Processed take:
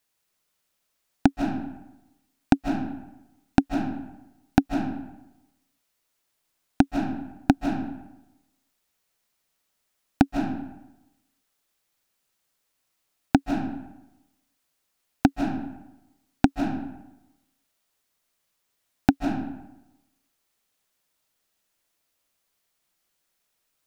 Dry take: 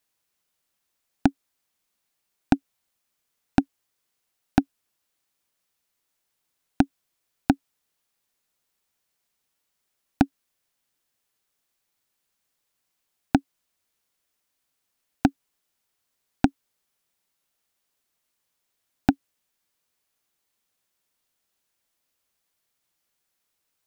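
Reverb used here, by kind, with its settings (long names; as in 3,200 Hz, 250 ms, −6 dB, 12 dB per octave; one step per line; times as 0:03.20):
comb and all-pass reverb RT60 0.95 s, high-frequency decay 0.65×, pre-delay 115 ms, DRR 3 dB
level +1 dB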